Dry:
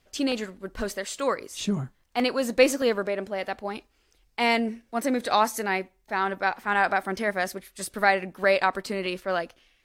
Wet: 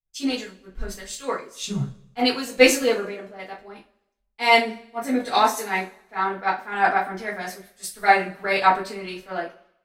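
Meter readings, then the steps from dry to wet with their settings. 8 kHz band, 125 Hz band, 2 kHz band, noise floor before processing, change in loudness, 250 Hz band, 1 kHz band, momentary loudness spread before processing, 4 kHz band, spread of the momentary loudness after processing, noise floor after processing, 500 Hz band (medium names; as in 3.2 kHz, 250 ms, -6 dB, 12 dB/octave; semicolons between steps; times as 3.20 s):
+4.0 dB, +2.5 dB, +3.0 dB, -67 dBFS, +4.0 dB, +1.0 dB, +4.5 dB, 10 LU, +5.0 dB, 18 LU, -72 dBFS, +1.0 dB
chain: two-slope reverb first 0.3 s, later 1.8 s, from -21 dB, DRR -6 dB; three bands expanded up and down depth 100%; trim -5.5 dB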